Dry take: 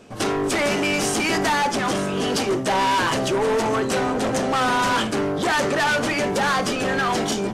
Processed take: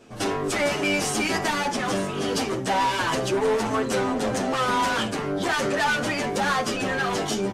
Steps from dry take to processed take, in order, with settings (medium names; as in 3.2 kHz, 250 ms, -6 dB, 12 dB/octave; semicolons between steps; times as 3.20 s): endless flanger 8.7 ms -2.9 Hz